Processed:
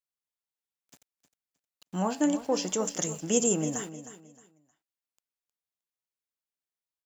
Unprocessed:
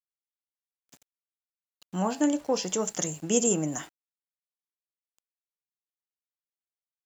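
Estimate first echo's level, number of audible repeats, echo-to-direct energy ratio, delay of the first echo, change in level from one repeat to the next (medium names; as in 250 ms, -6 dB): -13.0 dB, 2, -12.5 dB, 311 ms, -11.5 dB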